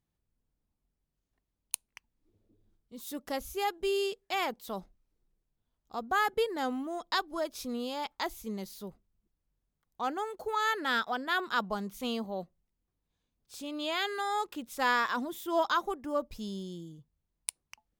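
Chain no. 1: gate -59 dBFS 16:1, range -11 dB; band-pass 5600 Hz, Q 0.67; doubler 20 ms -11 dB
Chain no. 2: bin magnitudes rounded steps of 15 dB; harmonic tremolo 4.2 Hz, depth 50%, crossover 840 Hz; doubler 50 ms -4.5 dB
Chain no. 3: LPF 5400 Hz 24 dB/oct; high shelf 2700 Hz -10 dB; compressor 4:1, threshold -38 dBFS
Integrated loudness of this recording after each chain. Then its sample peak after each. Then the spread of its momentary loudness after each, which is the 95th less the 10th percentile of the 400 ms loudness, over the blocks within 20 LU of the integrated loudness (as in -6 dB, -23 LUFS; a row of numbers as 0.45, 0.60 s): -41.0, -34.5, -42.0 LUFS; -12.5, -11.0, -25.5 dBFS; 15, 13, 14 LU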